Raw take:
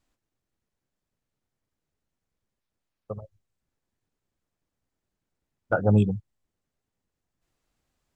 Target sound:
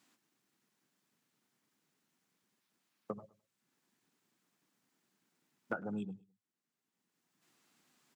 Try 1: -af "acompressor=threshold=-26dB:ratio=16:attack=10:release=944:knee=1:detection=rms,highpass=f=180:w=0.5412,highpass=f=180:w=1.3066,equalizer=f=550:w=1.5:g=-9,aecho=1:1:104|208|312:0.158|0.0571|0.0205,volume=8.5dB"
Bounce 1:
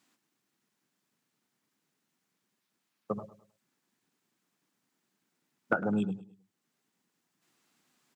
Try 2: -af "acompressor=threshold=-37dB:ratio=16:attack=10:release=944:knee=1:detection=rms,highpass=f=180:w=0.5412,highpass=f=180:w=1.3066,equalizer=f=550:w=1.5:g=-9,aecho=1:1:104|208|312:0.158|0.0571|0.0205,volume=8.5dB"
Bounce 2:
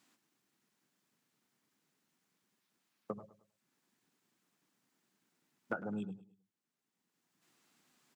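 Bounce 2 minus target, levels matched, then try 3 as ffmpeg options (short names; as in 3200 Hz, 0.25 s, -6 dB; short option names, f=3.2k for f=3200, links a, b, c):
echo-to-direct +6.5 dB
-af "acompressor=threshold=-37dB:ratio=16:attack=10:release=944:knee=1:detection=rms,highpass=f=180:w=0.5412,highpass=f=180:w=1.3066,equalizer=f=550:w=1.5:g=-9,aecho=1:1:104|208:0.075|0.027,volume=8.5dB"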